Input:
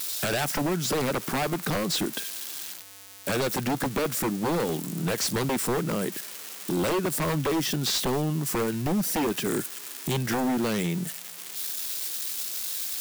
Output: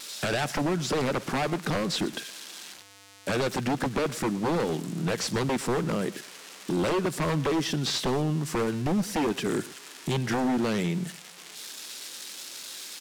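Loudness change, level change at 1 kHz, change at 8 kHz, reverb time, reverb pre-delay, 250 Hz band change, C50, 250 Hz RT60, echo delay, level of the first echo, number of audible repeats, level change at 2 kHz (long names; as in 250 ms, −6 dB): −1.0 dB, 0.0 dB, −5.5 dB, no reverb audible, no reverb audible, 0.0 dB, no reverb audible, no reverb audible, 118 ms, −19.0 dB, 1, −0.5 dB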